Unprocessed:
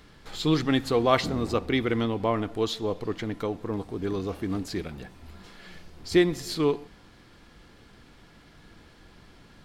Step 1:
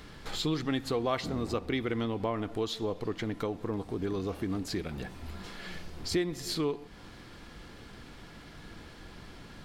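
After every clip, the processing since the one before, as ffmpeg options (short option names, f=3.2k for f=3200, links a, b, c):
-af "acompressor=threshold=-38dB:ratio=2.5,volume=4.5dB"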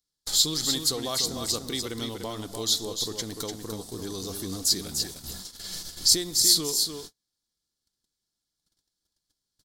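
-af "aecho=1:1:296:0.501,agate=range=-42dB:threshold=-40dB:ratio=16:detection=peak,aexciter=amount=8.9:drive=8.3:freq=3.8k,volume=-3.5dB"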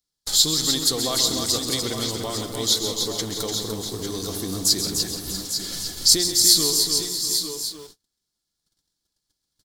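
-filter_complex "[0:a]aecho=1:1:133|176|642|683|839|855:0.335|0.188|0.188|0.106|0.224|0.335,asplit=2[a][b];[b]acrusher=bits=6:mix=0:aa=0.000001,volume=-9dB[c];[a][c]amix=inputs=2:normalize=0,volume=1.5dB"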